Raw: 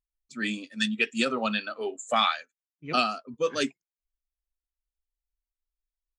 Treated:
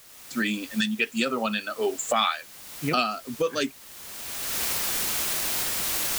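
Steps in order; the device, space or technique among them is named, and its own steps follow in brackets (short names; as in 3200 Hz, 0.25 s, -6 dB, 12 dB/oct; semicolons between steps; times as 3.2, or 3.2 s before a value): cheap recorder with automatic gain (white noise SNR 20 dB; recorder AGC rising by 25 dB/s)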